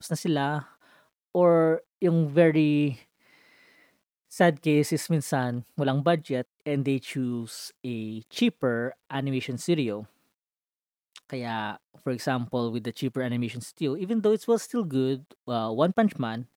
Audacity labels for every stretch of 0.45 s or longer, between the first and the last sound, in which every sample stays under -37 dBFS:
0.620000	1.350000	silence
2.940000	4.330000	silence
10.040000	11.160000	silence